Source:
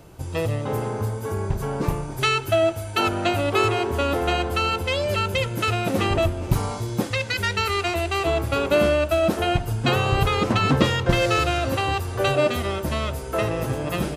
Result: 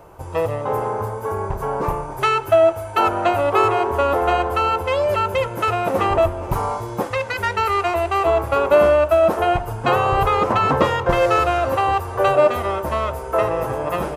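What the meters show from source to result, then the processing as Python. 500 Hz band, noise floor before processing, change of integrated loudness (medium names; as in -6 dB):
+5.5 dB, -32 dBFS, +3.5 dB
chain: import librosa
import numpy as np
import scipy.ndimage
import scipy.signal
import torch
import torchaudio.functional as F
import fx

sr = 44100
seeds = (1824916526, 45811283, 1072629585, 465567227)

y = fx.graphic_eq(x, sr, hz=(125, 250, 500, 1000, 4000, 8000), db=(-4, -5, 5, 10, -7, -4))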